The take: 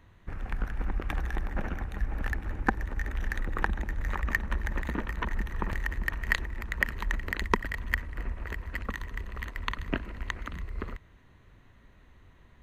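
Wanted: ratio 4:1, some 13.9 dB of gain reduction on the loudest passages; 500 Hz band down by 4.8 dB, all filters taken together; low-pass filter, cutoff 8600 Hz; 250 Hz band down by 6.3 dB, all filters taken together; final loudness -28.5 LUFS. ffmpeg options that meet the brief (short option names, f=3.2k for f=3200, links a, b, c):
-af "lowpass=8.6k,equalizer=f=250:t=o:g=-7.5,equalizer=f=500:t=o:g=-3.5,acompressor=threshold=-40dB:ratio=4,volume=17dB"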